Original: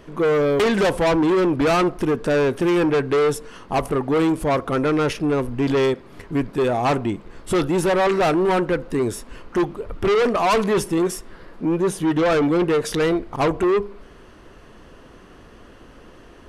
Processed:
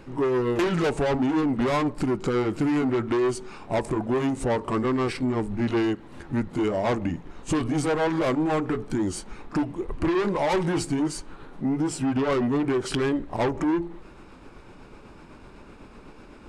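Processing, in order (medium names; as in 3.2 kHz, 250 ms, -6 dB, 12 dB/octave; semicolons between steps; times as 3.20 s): rotating-head pitch shifter -3 st; compression 3:1, threshold -23 dBFS, peak gain reduction 5 dB; pre-echo 35 ms -19 dB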